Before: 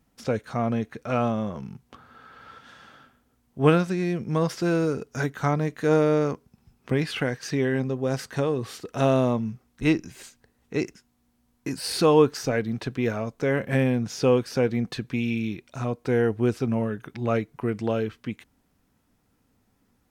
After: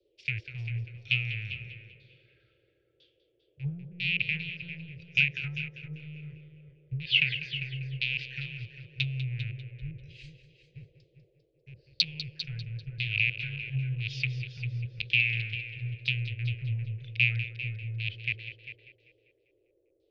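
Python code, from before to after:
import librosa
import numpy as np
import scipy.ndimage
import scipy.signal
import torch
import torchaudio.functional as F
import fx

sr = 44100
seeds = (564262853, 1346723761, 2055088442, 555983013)

p1 = fx.rattle_buzz(x, sr, strikes_db=-30.0, level_db=-17.0)
p2 = fx.env_lowpass_down(p1, sr, base_hz=550.0, full_db=-16.5)
p3 = scipy.signal.sosfilt(scipy.signal.ellip(3, 1.0, 40, [120.0, 2500.0], 'bandstop', fs=sr, output='sos'), p2)
p4 = fx.peak_eq(p3, sr, hz=4500.0, db=9.5, octaves=0.95)
p5 = fx.filter_lfo_lowpass(p4, sr, shape='saw_down', hz=1.0, low_hz=410.0, high_hz=4100.0, q=3.0)
p6 = p5 + fx.echo_feedback(p5, sr, ms=197, feedback_pct=56, wet_db=-11, dry=0)
p7 = fx.dmg_noise_band(p6, sr, seeds[0], low_hz=320.0, high_hz=550.0, level_db=-61.0)
p8 = p7 + 10.0 ** (-10.0 / 20.0) * np.pad(p7, (int(400 * sr / 1000.0), 0))[:len(p7)]
p9 = fx.band_widen(p8, sr, depth_pct=40)
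y = F.gain(torch.from_numpy(p9), -2.5).numpy()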